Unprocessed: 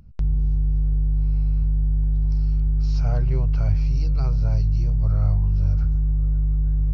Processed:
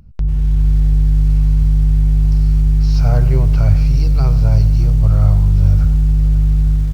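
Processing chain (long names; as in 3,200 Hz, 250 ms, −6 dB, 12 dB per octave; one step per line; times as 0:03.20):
automatic gain control gain up to 5 dB
repeating echo 627 ms, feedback 30%, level −20 dB
feedback echo at a low word length 92 ms, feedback 55%, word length 6 bits, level −14 dB
level +4.5 dB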